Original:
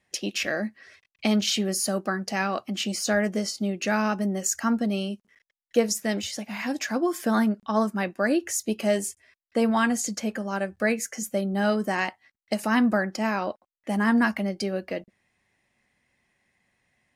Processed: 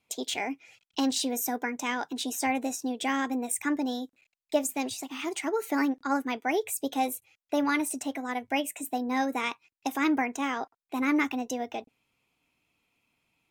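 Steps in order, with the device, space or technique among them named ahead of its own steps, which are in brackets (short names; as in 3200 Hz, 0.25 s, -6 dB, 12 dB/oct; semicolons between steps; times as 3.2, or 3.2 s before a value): nightcore (varispeed +27%); gain -4 dB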